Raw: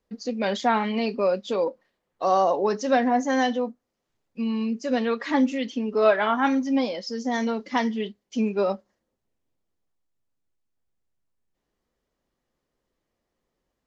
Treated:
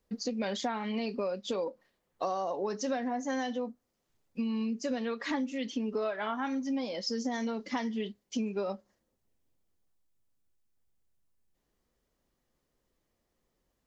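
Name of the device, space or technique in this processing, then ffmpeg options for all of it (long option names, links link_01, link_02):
ASMR close-microphone chain: -af "lowshelf=frequency=170:gain=4.5,acompressor=threshold=-28dB:ratio=10,highshelf=frequency=6000:gain=7,volume=-1.5dB"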